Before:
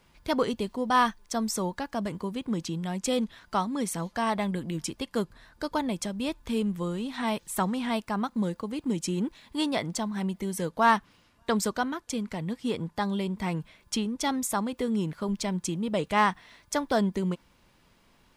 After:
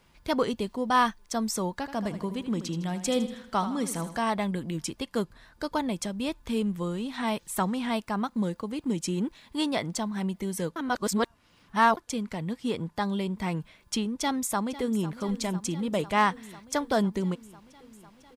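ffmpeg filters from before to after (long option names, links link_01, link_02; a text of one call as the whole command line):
ffmpeg -i in.wav -filter_complex "[0:a]asettb=1/sr,asplit=3[link_01][link_02][link_03];[link_01]atrim=end=1.714[link_04];[link_02]atrim=start=1.71:end=4.2,asetpts=PTS-STARTPTS,afade=type=in:duration=0.004:curve=qsin,afade=type=out:start_time=2.486:duration=0.004:curve=qsin,aecho=1:1:79|158|237|316|395:0.266|0.125|0.0588|0.0276|0.013,atrim=end_sample=109809[link_05];[link_03]atrim=start=4.196[link_06];[link_04][link_05]acrossfade=duration=0.004:curve1=hsin:curve2=qsin[link_07];[link_07][link_06]acrossfade=duration=0.004:curve1=qsin:curve2=hsin,asplit=2[link_08][link_09];[link_09]afade=type=in:start_time=14.16:duration=0.01,afade=type=out:start_time=15.09:duration=0.01,aecho=0:1:500|1000|1500|2000|2500|3000|3500|4000|4500|5000|5500|6000:0.16788|0.134304|0.107443|0.0859548|0.0687638|0.0550111|0.0440088|0.0352071|0.0281657|0.0225325|0.018026|0.0144208[link_10];[link_08][link_10]amix=inputs=2:normalize=0,asplit=3[link_11][link_12][link_13];[link_11]atrim=end=10.762[link_14];[link_12]atrim=start=10.758:end=11.972,asetpts=PTS-STARTPTS,areverse[link_15];[link_13]atrim=start=11.968[link_16];[link_14][link_15]acrossfade=duration=0.004:curve1=hsin:curve2=hsin[link_17];[link_17][link_16]acrossfade=duration=0.004:curve1=hsin:curve2=hsin" out.wav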